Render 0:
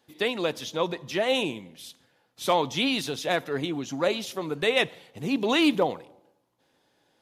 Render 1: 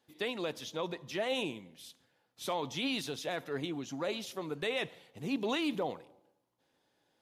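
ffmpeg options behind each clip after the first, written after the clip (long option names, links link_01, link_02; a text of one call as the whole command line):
ffmpeg -i in.wav -af "alimiter=limit=-17dB:level=0:latency=1:release=25,volume=-7.5dB" out.wav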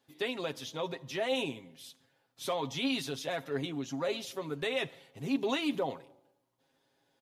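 ffmpeg -i in.wav -af "aecho=1:1:7.4:0.57" out.wav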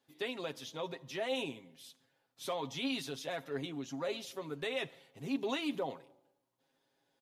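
ffmpeg -i in.wav -af "equalizer=frequency=70:width_type=o:width=0.69:gain=-13,volume=-4dB" out.wav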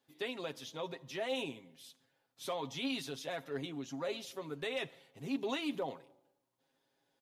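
ffmpeg -i in.wav -af "asoftclip=type=hard:threshold=-27dB,volume=-1dB" out.wav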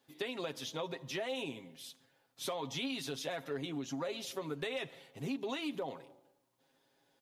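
ffmpeg -i in.wav -af "acompressor=threshold=-40dB:ratio=10,volume=5.5dB" out.wav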